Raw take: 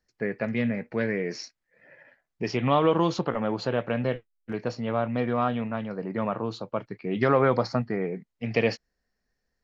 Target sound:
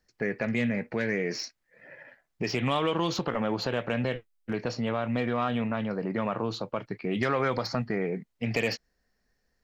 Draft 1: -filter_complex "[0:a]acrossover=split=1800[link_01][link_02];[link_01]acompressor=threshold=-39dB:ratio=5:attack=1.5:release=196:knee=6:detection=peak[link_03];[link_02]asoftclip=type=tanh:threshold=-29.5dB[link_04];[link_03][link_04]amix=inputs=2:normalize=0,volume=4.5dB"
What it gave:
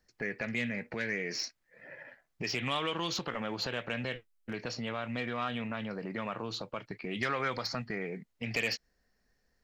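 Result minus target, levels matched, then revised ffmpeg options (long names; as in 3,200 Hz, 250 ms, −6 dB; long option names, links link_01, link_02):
downward compressor: peak gain reduction +9 dB
-filter_complex "[0:a]acrossover=split=1800[link_01][link_02];[link_01]acompressor=threshold=-28dB:ratio=5:attack=1.5:release=196:knee=6:detection=peak[link_03];[link_02]asoftclip=type=tanh:threshold=-29.5dB[link_04];[link_03][link_04]amix=inputs=2:normalize=0,volume=4.5dB"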